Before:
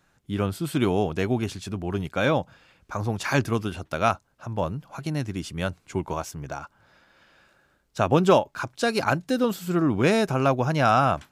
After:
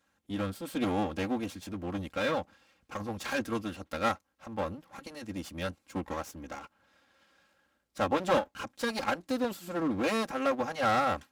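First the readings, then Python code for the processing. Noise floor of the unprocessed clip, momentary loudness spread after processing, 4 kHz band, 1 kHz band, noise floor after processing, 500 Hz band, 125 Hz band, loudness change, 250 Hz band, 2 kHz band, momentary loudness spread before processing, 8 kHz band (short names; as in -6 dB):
-67 dBFS, 14 LU, -5.5 dB, -6.5 dB, -75 dBFS, -8.0 dB, -14.5 dB, -7.5 dB, -7.5 dB, -6.5 dB, 13 LU, -7.0 dB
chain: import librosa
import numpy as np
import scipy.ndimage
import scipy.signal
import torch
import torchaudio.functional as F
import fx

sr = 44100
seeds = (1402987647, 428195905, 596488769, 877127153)

y = fx.lower_of_two(x, sr, delay_ms=3.7)
y = scipy.signal.sosfilt(scipy.signal.butter(2, 70.0, 'highpass', fs=sr, output='sos'), y)
y = F.gain(torch.from_numpy(y), -6.5).numpy()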